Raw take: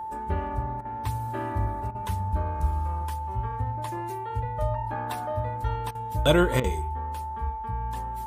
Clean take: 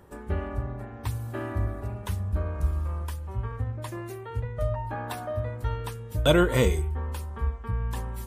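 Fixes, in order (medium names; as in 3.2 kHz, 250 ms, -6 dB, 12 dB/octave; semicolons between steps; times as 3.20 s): band-stop 880 Hz, Q 30; interpolate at 0.81/1.91/5.91/6.60 s, 39 ms; trim 0 dB, from 6.63 s +4 dB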